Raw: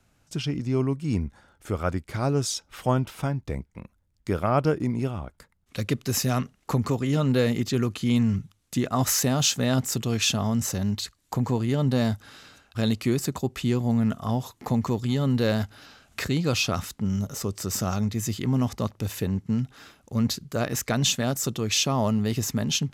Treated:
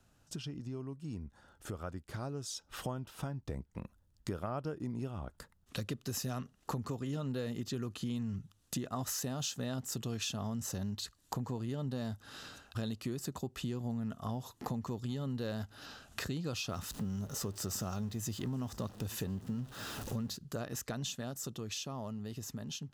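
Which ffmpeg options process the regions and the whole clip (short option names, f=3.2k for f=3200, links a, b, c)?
-filter_complex "[0:a]asettb=1/sr,asplit=3[a][b][c];[a]atrim=end=16.694[d];[b]atrim=start=16.69:end=20.37,asetpts=PTS-STARTPTS,afade=t=in:d=0.004:c=qsin,afade=t=out:st=3.676:d=0.004:c=qsin,aeval=exprs='val(0)+0.5*0.0119*sgn(val(0))':c=same,aecho=1:1:966:0.0841,atrim=end_sample=162288[e];[c]atrim=start=20.366[f];[d][e]acrossfade=d=0.004:c1=hsin:c2=qsin[g];[g][f]acrossfade=d=0.004:c1=qsin:c2=hsin,acompressor=threshold=-37dB:ratio=5,equalizer=f=2.2k:w=7.4:g=-11,dynaudnorm=f=720:g=7:m=4dB,volume=-3.5dB"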